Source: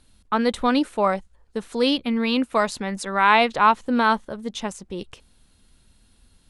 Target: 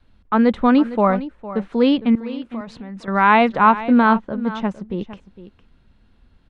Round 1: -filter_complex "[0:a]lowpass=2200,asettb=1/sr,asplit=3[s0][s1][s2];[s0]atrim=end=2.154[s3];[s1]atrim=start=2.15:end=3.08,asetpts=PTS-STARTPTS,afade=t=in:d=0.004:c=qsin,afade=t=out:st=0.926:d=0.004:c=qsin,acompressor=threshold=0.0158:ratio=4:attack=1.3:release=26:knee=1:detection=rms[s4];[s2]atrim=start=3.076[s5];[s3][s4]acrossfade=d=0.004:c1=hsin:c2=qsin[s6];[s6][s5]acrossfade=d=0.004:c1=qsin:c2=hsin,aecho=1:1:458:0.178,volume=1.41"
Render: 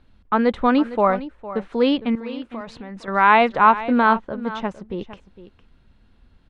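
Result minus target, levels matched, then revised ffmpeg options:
250 Hz band -3.5 dB
-filter_complex "[0:a]lowpass=2200,adynamicequalizer=threshold=0.0126:dfrequency=200:dqfactor=1.5:tfrequency=200:tqfactor=1.5:attack=5:release=100:ratio=0.438:range=3.5:mode=boostabove:tftype=bell,asettb=1/sr,asplit=3[s0][s1][s2];[s0]atrim=end=2.154[s3];[s1]atrim=start=2.15:end=3.08,asetpts=PTS-STARTPTS,afade=t=in:d=0.004:c=qsin,afade=t=out:st=0.926:d=0.004:c=qsin,acompressor=threshold=0.0158:ratio=4:attack=1.3:release=26:knee=1:detection=rms[s4];[s2]atrim=start=3.076[s5];[s3][s4]acrossfade=d=0.004:c1=hsin:c2=qsin[s6];[s6][s5]acrossfade=d=0.004:c1=qsin:c2=hsin,aecho=1:1:458:0.178,volume=1.41"

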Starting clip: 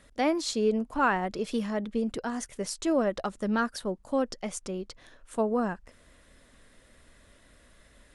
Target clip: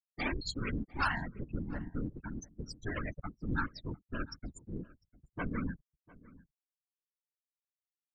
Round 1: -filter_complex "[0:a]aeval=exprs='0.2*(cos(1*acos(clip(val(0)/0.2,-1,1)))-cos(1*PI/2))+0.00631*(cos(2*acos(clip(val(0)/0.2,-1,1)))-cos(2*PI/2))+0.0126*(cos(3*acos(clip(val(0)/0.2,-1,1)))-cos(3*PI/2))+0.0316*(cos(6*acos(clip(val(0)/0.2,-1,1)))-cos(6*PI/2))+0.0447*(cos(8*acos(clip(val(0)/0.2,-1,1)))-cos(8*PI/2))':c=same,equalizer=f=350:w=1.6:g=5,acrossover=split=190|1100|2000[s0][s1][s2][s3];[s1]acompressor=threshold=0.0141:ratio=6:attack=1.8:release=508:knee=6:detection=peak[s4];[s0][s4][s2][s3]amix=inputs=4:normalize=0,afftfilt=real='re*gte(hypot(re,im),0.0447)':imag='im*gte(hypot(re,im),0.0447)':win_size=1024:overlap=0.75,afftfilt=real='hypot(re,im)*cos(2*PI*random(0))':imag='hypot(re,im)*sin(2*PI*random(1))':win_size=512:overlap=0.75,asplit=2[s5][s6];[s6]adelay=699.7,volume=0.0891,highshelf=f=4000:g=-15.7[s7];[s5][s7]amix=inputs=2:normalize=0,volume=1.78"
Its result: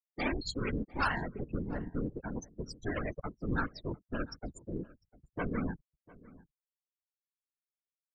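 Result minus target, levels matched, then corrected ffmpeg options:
compression: peak gain reduction -8.5 dB
-filter_complex "[0:a]aeval=exprs='0.2*(cos(1*acos(clip(val(0)/0.2,-1,1)))-cos(1*PI/2))+0.00631*(cos(2*acos(clip(val(0)/0.2,-1,1)))-cos(2*PI/2))+0.0126*(cos(3*acos(clip(val(0)/0.2,-1,1)))-cos(3*PI/2))+0.0316*(cos(6*acos(clip(val(0)/0.2,-1,1)))-cos(6*PI/2))+0.0447*(cos(8*acos(clip(val(0)/0.2,-1,1)))-cos(8*PI/2))':c=same,equalizer=f=350:w=1.6:g=5,acrossover=split=190|1100|2000[s0][s1][s2][s3];[s1]acompressor=threshold=0.00422:ratio=6:attack=1.8:release=508:knee=6:detection=peak[s4];[s0][s4][s2][s3]amix=inputs=4:normalize=0,afftfilt=real='re*gte(hypot(re,im),0.0447)':imag='im*gte(hypot(re,im),0.0447)':win_size=1024:overlap=0.75,afftfilt=real='hypot(re,im)*cos(2*PI*random(0))':imag='hypot(re,im)*sin(2*PI*random(1))':win_size=512:overlap=0.75,asplit=2[s5][s6];[s6]adelay=699.7,volume=0.0891,highshelf=f=4000:g=-15.7[s7];[s5][s7]amix=inputs=2:normalize=0,volume=1.78"

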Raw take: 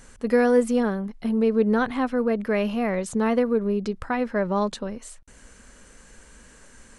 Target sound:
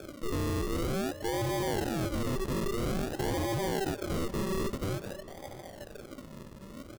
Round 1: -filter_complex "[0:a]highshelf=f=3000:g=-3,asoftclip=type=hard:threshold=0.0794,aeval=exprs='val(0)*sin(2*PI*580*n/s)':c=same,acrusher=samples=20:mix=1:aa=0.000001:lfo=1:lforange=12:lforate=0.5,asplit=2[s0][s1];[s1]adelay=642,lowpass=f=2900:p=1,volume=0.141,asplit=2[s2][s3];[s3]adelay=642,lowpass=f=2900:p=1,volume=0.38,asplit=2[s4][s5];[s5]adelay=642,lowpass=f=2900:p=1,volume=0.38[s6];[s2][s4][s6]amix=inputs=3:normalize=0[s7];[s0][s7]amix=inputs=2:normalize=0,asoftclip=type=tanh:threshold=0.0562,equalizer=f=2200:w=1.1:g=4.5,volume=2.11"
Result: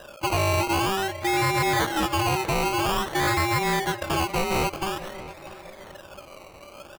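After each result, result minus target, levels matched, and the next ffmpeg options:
decimation with a swept rate: distortion -10 dB; 2 kHz band +6.0 dB; hard clipper: distortion -6 dB
-filter_complex "[0:a]highshelf=f=3000:g=-3,asoftclip=type=hard:threshold=0.0794,aeval=exprs='val(0)*sin(2*PI*580*n/s)':c=same,acrusher=samples=45:mix=1:aa=0.000001:lfo=1:lforange=27:lforate=0.5,asplit=2[s0][s1];[s1]adelay=642,lowpass=f=2900:p=1,volume=0.141,asplit=2[s2][s3];[s3]adelay=642,lowpass=f=2900:p=1,volume=0.38,asplit=2[s4][s5];[s5]adelay=642,lowpass=f=2900:p=1,volume=0.38[s6];[s2][s4][s6]amix=inputs=3:normalize=0[s7];[s0][s7]amix=inputs=2:normalize=0,asoftclip=type=tanh:threshold=0.0562,equalizer=f=2200:w=1.1:g=4.5,volume=2.11"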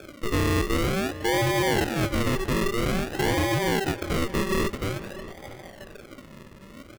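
2 kHz band +5.0 dB; hard clipper: distortion -6 dB
-filter_complex "[0:a]highshelf=f=3000:g=-3,asoftclip=type=hard:threshold=0.0794,aeval=exprs='val(0)*sin(2*PI*580*n/s)':c=same,acrusher=samples=45:mix=1:aa=0.000001:lfo=1:lforange=27:lforate=0.5,asplit=2[s0][s1];[s1]adelay=642,lowpass=f=2900:p=1,volume=0.141,asplit=2[s2][s3];[s3]adelay=642,lowpass=f=2900:p=1,volume=0.38,asplit=2[s4][s5];[s5]adelay=642,lowpass=f=2900:p=1,volume=0.38[s6];[s2][s4][s6]amix=inputs=3:normalize=0[s7];[s0][s7]amix=inputs=2:normalize=0,asoftclip=type=tanh:threshold=0.0562,equalizer=f=2200:w=1.1:g=-3,volume=2.11"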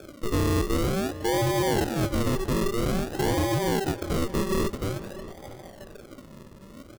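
hard clipper: distortion -6 dB
-filter_complex "[0:a]highshelf=f=3000:g=-3,asoftclip=type=hard:threshold=0.0224,aeval=exprs='val(0)*sin(2*PI*580*n/s)':c=same,acrusher=samples=45:mix=1:aa=0.000001:lfo=1:lforange=27:lforate=0.5,asplit=2[s0][s1];[s1]adelay=642,lowpass=f=2900:p=1,volume=0.141,asplit=2[s2][s3];[s3]adelay=642,lowpass=f=2900:p=1,volume=0.38,asplit=2[s4][s5];[s5]adelay=642,lowpass=f=2900:p=1,volume=0.38[s6];[s2][s4][s6]amix=inputs=3:normalize=0[s7];[s0][s7]amix=inputs=2:normalize=0,asoftclip=type=tanh:threshold=0.0562,equalizer=f=2200:w=1.1:g=-3,volume=2.11"

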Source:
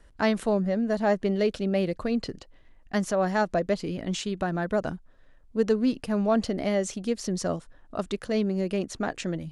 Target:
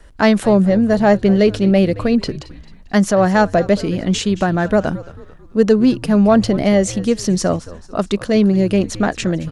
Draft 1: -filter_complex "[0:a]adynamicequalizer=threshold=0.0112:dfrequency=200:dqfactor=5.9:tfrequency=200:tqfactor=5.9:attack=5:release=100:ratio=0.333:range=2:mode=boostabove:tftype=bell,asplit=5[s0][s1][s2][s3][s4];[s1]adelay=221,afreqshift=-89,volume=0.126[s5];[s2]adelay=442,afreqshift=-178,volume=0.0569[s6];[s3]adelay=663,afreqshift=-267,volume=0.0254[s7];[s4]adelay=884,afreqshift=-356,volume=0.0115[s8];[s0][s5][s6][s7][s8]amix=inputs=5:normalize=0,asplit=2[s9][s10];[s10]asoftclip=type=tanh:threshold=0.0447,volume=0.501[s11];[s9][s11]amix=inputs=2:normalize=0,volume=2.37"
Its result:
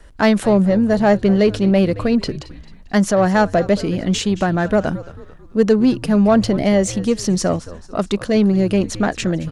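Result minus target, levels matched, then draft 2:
saturation: distortion +12 dB
-filter_complex "[0:a]adynamicequalizer=threshold=0.0112:dfrequency=200:dqfactor=5.9:tfrequency=200:tqfactor=5.9:attack=5:release=100:ratio=0.333:range=2:mode=boostabove:tftype=bell,asplit=5[s0][s1][s2][s3][s4];[s1]adelay=221,afreqshift=-89,volume=0.126[s5];[s2]adelay=442,afreqshift=-178,volume=0.0569[s6];[s3]adelay=663,afreqshift=-267,volume=0.0254[s7];[s4]adelay=884,afreqshift=-356,volume=0.0115[s8];[s0][s5][s6][s7][s8]amix=inputs=5:normalize=0,asplit=2[s9][s10];[s10]asoftclip=type=tanh:threshold=0.158,volume=0.501[s11];[s9][s11]amix=inputs=2:normalize=0,volume=2.37"

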